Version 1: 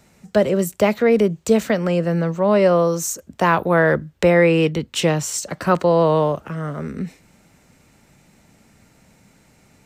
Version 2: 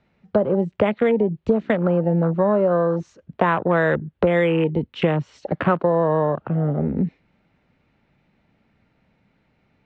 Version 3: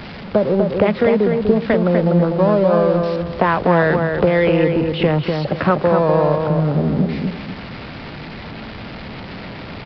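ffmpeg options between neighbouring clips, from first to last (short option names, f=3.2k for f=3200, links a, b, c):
-af "lowpass=f=3.6k:w=0.5412,lowpass=f=3.6k:w=1.3066,afwtdn=0.0562,acompressor=threshold=-23dB:ratio=5,volume=7dB"
-filter_complex "[0:a]aeval=exprs='val(0)+0.5*0.0355*sgn(val(0))':c=same,asplit=2[a][b];[b]adelay=247,lowpass=f=2.2k:p=1,volume=-4dB,asplit=2[c][d];[d]adelay=247,lowpass=f=2.2k:p=1,volume=0.31,asplit=2[e][f];[f]adelay=247,lowpass=f=2.2k:p=1,volume=0.31,asplit=2[g][h];[h]adelay=247,lowpass=f=2.2k:p=1,volume=0.31[i];[c][e][g][i]amix=inputs=4:normalize=0[j];[a][j]amix=inputs=2:normalize=0,aresample=11025,aresample=44100,volume=2dB"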